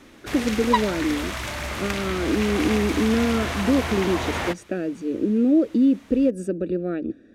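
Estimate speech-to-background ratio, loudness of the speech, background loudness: 4.5 dB, -23.5 LUFS, -28.0 LUFS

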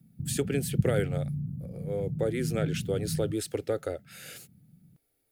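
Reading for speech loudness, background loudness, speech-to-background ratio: -32.5 LUFS, -33.5 LUFS, 1.0 dB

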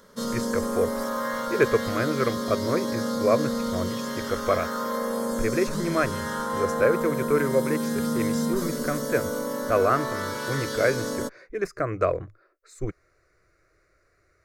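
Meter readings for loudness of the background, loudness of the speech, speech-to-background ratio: -29.0 LUFS, -27.5 LUFS, 1.5 dB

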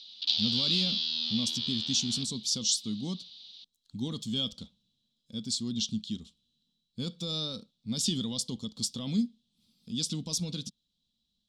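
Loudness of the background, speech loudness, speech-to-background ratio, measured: -29.0 LUFS, -32.5 LUFS, -3.5 dB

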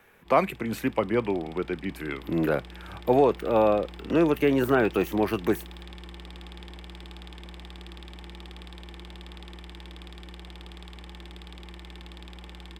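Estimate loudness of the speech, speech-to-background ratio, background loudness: -25.5 LUFS, 19.0 dB, -44.5 LUFS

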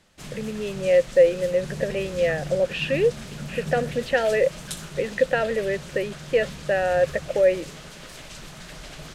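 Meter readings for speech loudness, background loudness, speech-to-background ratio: -23.5 LUFS, -37.0 LUFS, 13.5 dB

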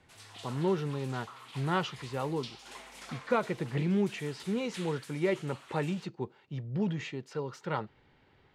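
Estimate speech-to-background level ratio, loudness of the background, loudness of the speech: 15.0 dB, -49.0 LUFS, -34.0 LUFS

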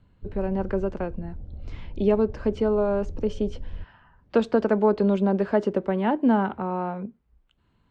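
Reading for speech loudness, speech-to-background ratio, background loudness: -25.0 LUFS, 17.0 dB, -42.0 LUFS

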